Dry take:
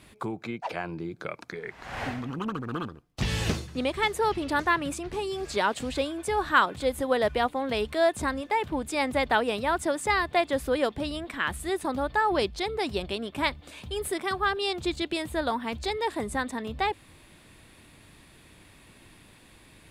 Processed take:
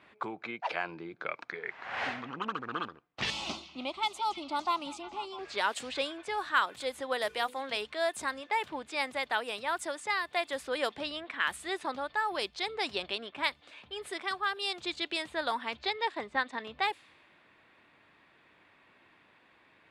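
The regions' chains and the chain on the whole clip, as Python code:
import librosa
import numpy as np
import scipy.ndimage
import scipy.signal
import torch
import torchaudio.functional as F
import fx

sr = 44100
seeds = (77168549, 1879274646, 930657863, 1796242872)

y = fx.chain(x, sr, fx.high_shelf(hz=6500.0, db=-3.5),
    fx.fixed_phaser(hz=460.0, stages=6),
    fx.echo_stepped(ms=163, hz=4500.0, octaves=-0.7, feedback_pct=70, wet_db=-9.0), at=(3.3, 5.39))
y = fx.chain(y, sr, fx.high_shelf(hz=4900.0, db=6.5),
    fx.hum_notches(base_hz=50, count=10), at=(7.18, 7.77))
y = fx.chain(y, sr, fx.lowpass(hz=4700.0, slope=12),
    fx.transient(attack_db=4, sustain_db=-5), at=(15.77, 16.6))
y = fx.highpass(y, sr, hz=1200.0, slope=6)
y = fx.env_lowpass(y, sr, base_hz=1700.0, full_db=-26.5)
y = fx.rider(y, sr, range_db=4, speed_s=0.5)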